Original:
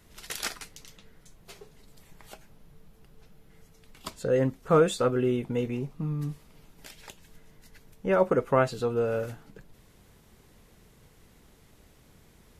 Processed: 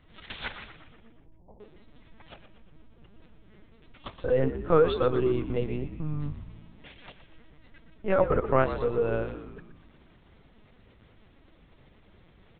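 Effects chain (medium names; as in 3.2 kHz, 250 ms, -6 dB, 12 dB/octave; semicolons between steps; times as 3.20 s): LPC vocoder at 8 kHz pitch kept; 0.73–1.60 s: elliptic low-pass 930 Hz, stop band 40 dB; frequency-shifting echo 120 ms, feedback 55%, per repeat -56 Hz, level -11 dB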